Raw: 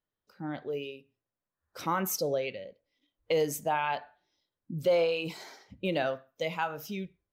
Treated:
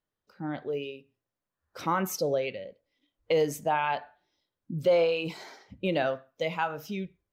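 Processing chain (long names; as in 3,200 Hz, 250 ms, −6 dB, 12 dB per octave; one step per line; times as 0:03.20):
high-shelf EQ 6,200 Hz −8.5 dB
level +2.5 dB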